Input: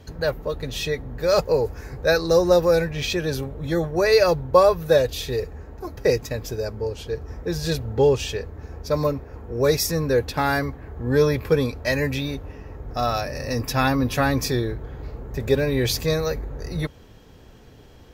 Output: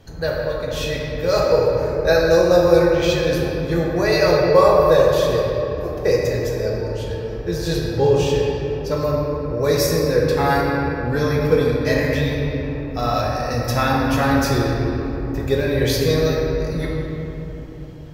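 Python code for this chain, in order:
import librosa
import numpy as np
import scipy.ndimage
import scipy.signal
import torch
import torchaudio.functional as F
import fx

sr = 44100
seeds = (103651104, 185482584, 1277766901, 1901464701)

y = fx.room_shoebox(x, sr, seeds[0], volume_m3=190.0, walls='hard', distance_m=0.69)
y = y * librosa.db_to_amplitude(-1.5)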